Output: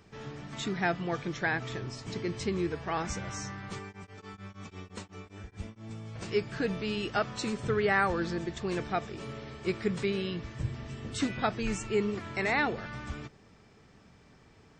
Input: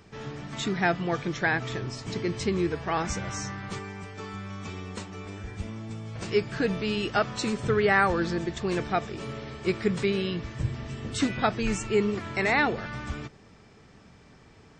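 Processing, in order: 3.86–5.91 s: tremolo of two beating tones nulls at 7.5 Hz -> 3.8 Hz; trim -4.5 dB

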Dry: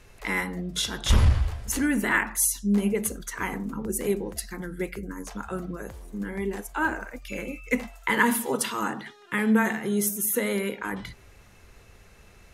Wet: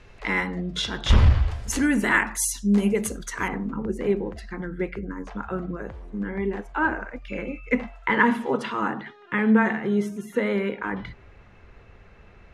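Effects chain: low-pass 4.1 kHz 12 dB/octave, from 1.51 s 8.1 kHz, from 3.48 s 2.4 kHz; trim +3 dB

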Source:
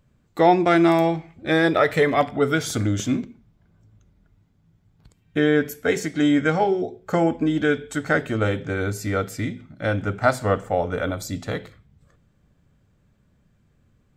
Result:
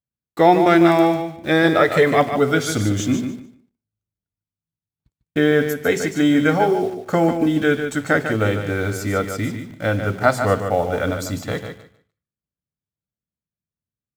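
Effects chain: high-pass 55 Hz 12 dB/octave; gate -48 dBFS, range -32 dB; in parallel at -9 dB: word length cut 6-bit, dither none; on the sum: feedback delay 148 ms, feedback 19%, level -8 dB

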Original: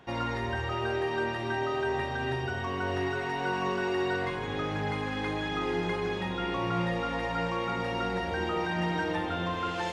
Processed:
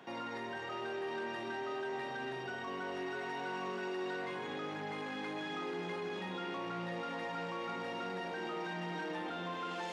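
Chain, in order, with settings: level rider gain up to 4 dB; saturation -22 dBFS, distortion -17 dB; peak limiter -34 dBFS, peak gain reduction 11.5 dB; high-pass 170 Hz 24 dB/octave

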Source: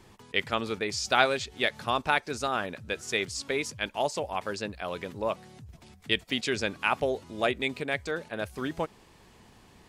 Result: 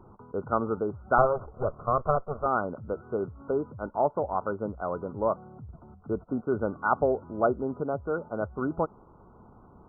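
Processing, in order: 1.18–2.46 s: comb filter that takes the minimum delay 1.7 ms; brick-wall FIR low-pass 1.5 kHz; trim +3.5 dB

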